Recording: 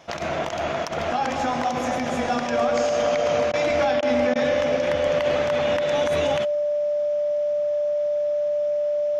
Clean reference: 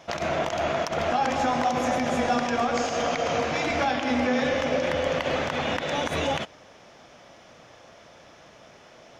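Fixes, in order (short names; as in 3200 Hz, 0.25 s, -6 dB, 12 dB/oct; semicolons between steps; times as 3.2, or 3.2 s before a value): notch 590 Hz, Q 30; interpolate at 3.52/4.01/4.34, 14 ms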